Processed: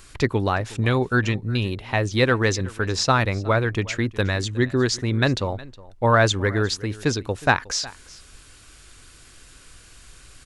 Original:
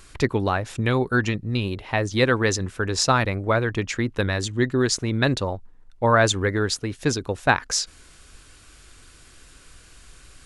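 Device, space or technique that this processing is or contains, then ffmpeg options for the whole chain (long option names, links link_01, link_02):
exciter from parts: -filter_complex "[0:a]asplit=2[link_01][link_02];[link_02]highpass=frequency=2400:poles=1,asoftclip=type=tanh:threshold=-22.5dB,volume=-10dB[link_03];[link_01][link_03]amix=inputs=2:normalize=0,acrossover=split=6500[link_04][link_05];[link_05]acompressor=threshold=-42dB:ratio=4:attack=1:release=60[link_06];[link_04][link_06]amix=inputs=2:normalize=0,equalizer=frequency=110:width_type=o:width=0.39:gain=3,aecho=1:1:364:0.0944"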